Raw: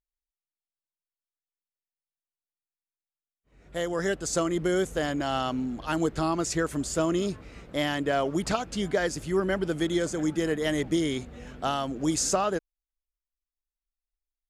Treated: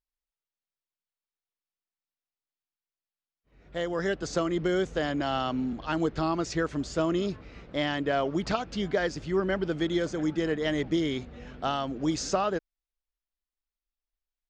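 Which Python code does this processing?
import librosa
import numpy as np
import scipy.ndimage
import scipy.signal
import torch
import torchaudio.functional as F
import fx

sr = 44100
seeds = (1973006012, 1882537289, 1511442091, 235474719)

y = scipy.signal.sosfilt(scipy.signal.butter(4, 5500.0, 'lowpass', fs=sr, output='sos'), x)
y = fx.band_squash(y, sr, depth_pct=40, at=(4.22, 5.73))
y = y * 10.0 ** (-1.0 / 20.0)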